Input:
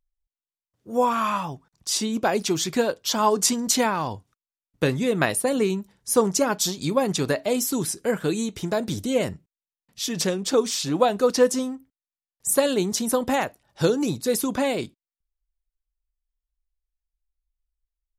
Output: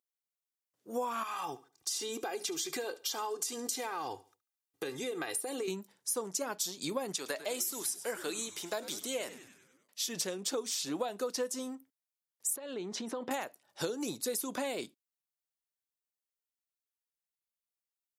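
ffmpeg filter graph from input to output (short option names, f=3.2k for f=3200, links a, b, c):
-filter_complex "[0:a]asettb=1/sr,asplit=3[a][b][c];[a]atrim=end=1.234[d];[b]atrim=start=1.23:end=5.68,asetpts=PTS-STARTPTS,afade=t=in:d=0.004:c=qsin,afade=t=out:st=4.446:d=0.004:c=qsin,aecho=1:1:2.5:0.84,atrim=end_sample=196245,acompressor=threshold=-27dB:ratio=6:attack=3.2:release=140:knee=1:detection=peak,aecho=1:1:71|142|213:0.112|0.0337|0.0101,atrim=end_sample=196245[e];[c]atrim=start=5.676[f];[d][e]acrossfade=d=0.004:c1=hsin:c2=qsin[g];[g][f]acrossfade=d=0.004:c1=qsin:c2=hsin,asettb=1/sr,asplit=3[h][i][j];[h]atrim=end=7.164[k];[i]atrim=start=7.16:end=10.09,asetpts=PTS-STARTPTS,afade=t=in:d=0.004:c=qsin,afade=t=out:st=2.926:d=0.004:c=qsin,highpass=f=650:p=1,asplit=7[l][m][n][o][p][q][r];[m]adelay=98,afreqshift=-130,volume=-15.5dB[s];[n]adelay=196,afreqshift=-260,volume=-19.9dB[t];[o]adelay=294,afreqshift=-390,volume=-24.4dB[u];[p]adelay=392,afreqshift=-520,volume=-28.8dB[v];[q]adelay=490,afreqshift=-650,volume=-33.2dB[w];[r]adelay=588,afreqshift=-780,volume=-37.7dB[x];[l][s][t][u][v][w][x]amix=inputs=7:normalize=0,atrim=end_sample=129213[y];[j]atrim=start=10.086[z];[k][y]acrossfade=d=0.004:c1=hsin:c2=qsin[aa];[aa][z]acrossfade=d=0.004:c1=qsin:c2=hsin,asettb=1/sr,asplit=3[ab][ac][ad];[ab]atrim=end=12.564[ae];[ac]atrim=start=12.56:end=13.31,asetpts=PTS-STARTPTS,afade=t=in:d=0.004:c=qsin,afade=t=out:st=0.746:d=0.004:c=qsin,lowpass=2.9k,acompressor=threshold=-26dB:ratio=12:attack=3.2:release=140:knee=1:detection=peak[af];[ad]atrim=start=13.306[ag];[ae][af]acrossfade=d=0.004:c1=hsin:c2=qsin[ah];[ah][ag]acrossfade=d=0.004:c1=qsin:c2=hsin,highpass=280,highshelf=f=5.5k:g=7.5,acompressor=threshold=-27dB:ratio=6,volume=-5dB"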